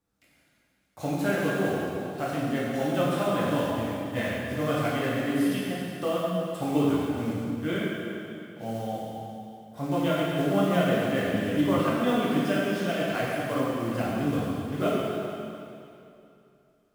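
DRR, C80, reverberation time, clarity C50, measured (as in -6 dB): -7.5 dB, -1.5 dB, 2.7 s, -2.5 dB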